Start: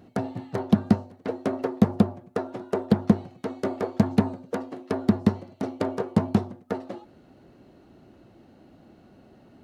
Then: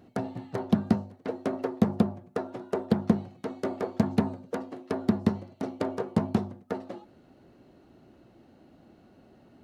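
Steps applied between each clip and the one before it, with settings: notches 50/100/150/200 Hz; gain -3 dB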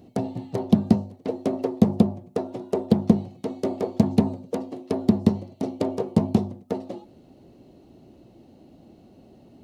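bell 1500 Hz -14 dB 1 oct; gain +6 dB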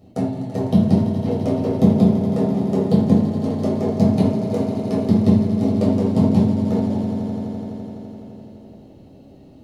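swelling echo 84 ms, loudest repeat 5, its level -13 dB; reverb RT60 0.60 s, pre-delay 8 ms, DRR -5 dB; gain -5 dB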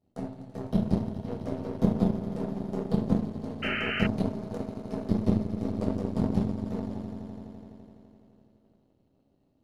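half-wave gain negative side -3 dB; power-law curve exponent 1.4; painted sound noise, 3.62–4.07, 1200–3100 Hz -26 dBFS; gain -6 dB

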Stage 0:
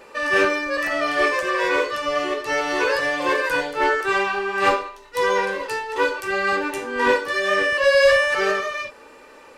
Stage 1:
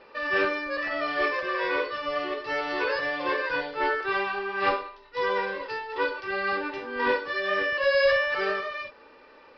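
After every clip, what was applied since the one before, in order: Chebyshev low-pass 5200 Hz, order 6; gain -6 dB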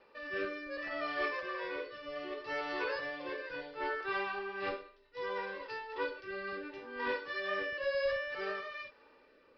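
rotary speaker horn 0.65 Hz; gain -8 dB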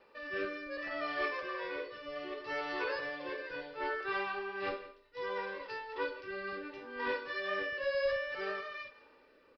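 echo 0.166 s -17.5 dB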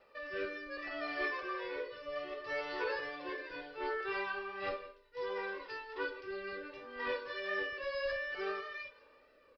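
flange 0.43 Hz, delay 1.5 ms, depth 1.5 ms, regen +35%; gain +2.5 dB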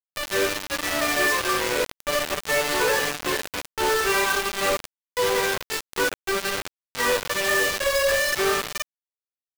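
companded quantiser 2-bit; gain +7 dB

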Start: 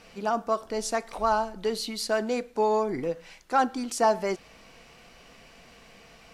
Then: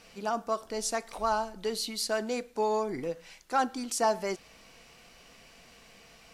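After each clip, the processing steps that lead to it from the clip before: high shelf 3700 Hz +7 dB; gain -4.5 dB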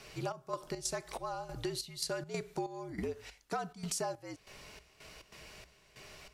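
step gate "xxx..xx.xxx..." 141 bpm -12 dB; frequency shift -66 Hz; compressor 12:1, threshold -36 dBFS, peak gain reduction 15 dB; gain +2.5 dB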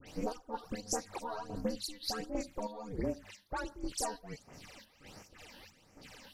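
ring modulator 150 Hz; phaser stages 12, 1.4 Hz, lowest notch 120–3800 Hz; dispersion highs, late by 71 ms, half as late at 2400 Hz; gain +5 dB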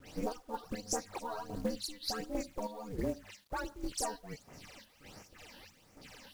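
companded quantiser 6-bit

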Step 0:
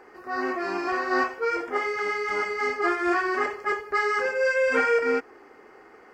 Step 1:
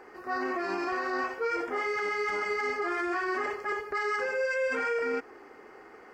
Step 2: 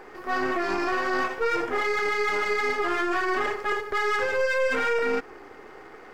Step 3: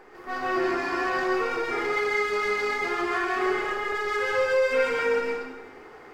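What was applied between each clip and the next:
limiter -23 dBFS, peak gain reduction 10.5 dB
half-wave gain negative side -7 dB; gain +7.5 dB
plate-style reverb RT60 1 s, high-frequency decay 0.95×, pre-delay 0.11 s, DRR -3 dB; gain -5.5 dB

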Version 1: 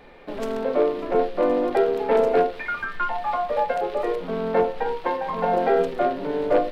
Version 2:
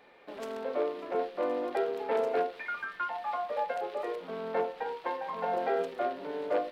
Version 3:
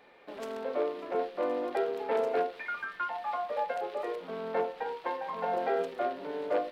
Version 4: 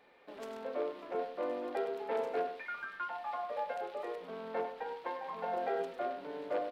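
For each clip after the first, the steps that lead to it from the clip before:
HPF 460 Hz 6 dB/oct; gain -7.5 dB
nothing audible
echo 0.1 s -10 dB; gain -5.5 dB

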